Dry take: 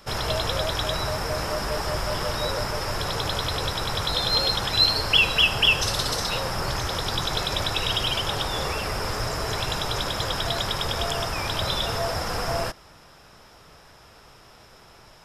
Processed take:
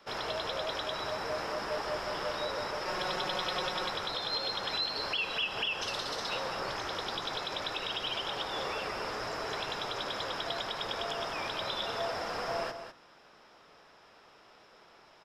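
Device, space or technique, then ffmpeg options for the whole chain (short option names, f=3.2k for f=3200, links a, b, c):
DJ mixer with the lows and highs turned down: -filter_complex "[0:a]acrossover=split=210 5300:gain=0.141 1 0.178[a][b][c];[a][b][c]amix=inputs=3:normalize=0,alimiter=limit=-17.5dB:level=0:latency=1:release=172,asettb=1/sr,asplit=3[d][e][f];[d]atrim=end=2.854[g];[e]atrim=start=2.85:end=3.9,asetpts=PTS-STARTPTS,afade=t=in:d=0.004:c=qsin,afade=t=out:st=1.046:d=0.004:c=qsin,aecho=1:1:5.5:0.89,atrim=end_sample=46305[h];[f]atrim=start=3.896[i];[g][h]acrossfade=d=0.004:c1=hsin:c2=qsin[j];[j][i]acrossfade=d=0.004:c1=qsin:c2=hsin,aecho=1:1:200:0.335,volume=-6.5dB"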